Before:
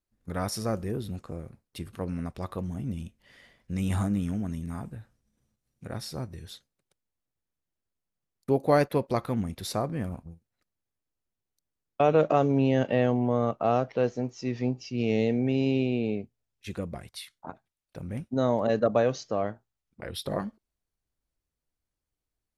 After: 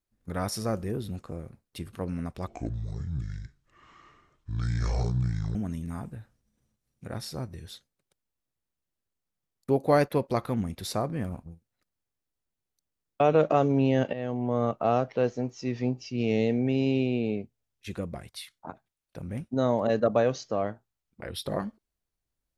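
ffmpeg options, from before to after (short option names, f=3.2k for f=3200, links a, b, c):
-filter_complex "[0:a]asplit=4[a][b][c][d];[a]atrim=end=2.474[e];[b]atrim=start=2.47:end=4.35,asetpts=PTS-STARTPTS,asetrate=26901,aresample=44100[f];[c]atrim=start=4.346:end=12.93,asetpts=PTS-STARTPTS,afade=t=out:st=8.58:d=0.004:c=hsin:silence=0.188365[g];[d]atrim=start=12.93,asetpts=PTS-STARTPTS,afade=t=in:d=0.51:silence=0.188365[h];[e][f]acrossfade=d=0.004:c1=hsin:c2=hsin[i];[g][h]concat=n=2:v=0:a=1[j];[i][j]acrossfade=d=0.004:c1=hsin:c2=hsin"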